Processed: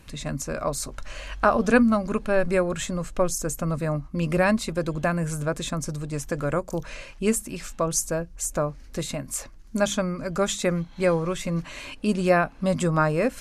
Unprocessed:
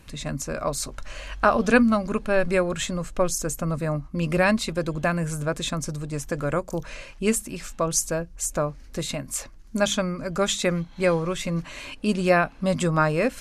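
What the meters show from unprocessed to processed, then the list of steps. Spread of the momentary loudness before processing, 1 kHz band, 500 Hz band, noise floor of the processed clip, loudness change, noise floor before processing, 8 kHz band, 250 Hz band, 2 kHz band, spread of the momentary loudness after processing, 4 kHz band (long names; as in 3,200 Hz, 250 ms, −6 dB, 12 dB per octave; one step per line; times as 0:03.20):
11 LU, −0.5 dB, 0.0 dB, −45 dBFS, −0.5 dB, −45 dBFS, −1.5 dB, 0.0 dB, −2.0 dB, 10 LU, −4.0 dB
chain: dynamic equaliser 3,300 Hz, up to −5 dB, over −37 dBFS, Q 0.83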